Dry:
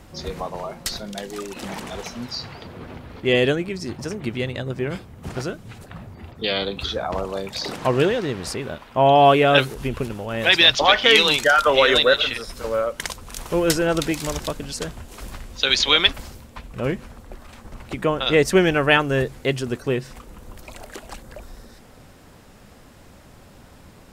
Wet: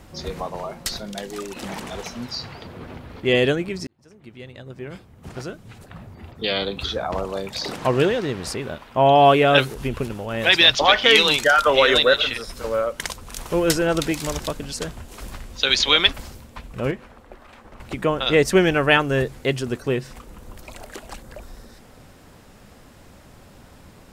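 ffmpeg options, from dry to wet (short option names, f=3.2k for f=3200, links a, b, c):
-filter_complex "[0:a]asettb=1/sr,asplit=3[a][b][c];[a]atrim=end=16.914[d];[b]atrim=start=16.91:end=17.8,asetpts=PTS-STARTPTS,afade=t=in:d=0.004:c=qsin,afade=t=out:st=0.886:d=0.004:c=qsin,bass=f=250:g=-9,treble=f=4k:g=-10[e];[c]atrim=start=17.796[f];[d][e]acrossfade=d=0.004:c1=hsin:c2=qsin[g];[g][f]acrossfade=d=0.004:c1=qsin:c2=hsin,asplit=2[h][i];[h]atrim=end=3.87,asetpts=PTS-STARTPTS,afade=t=out:st=3.866:d=0.004:c=hsin[j];[i]atrim=start=3.87,asetpts=PTS-STARTPTS,afade=t=in:d=2.67[k];[j][k]concat=n=2:v=0:a=1"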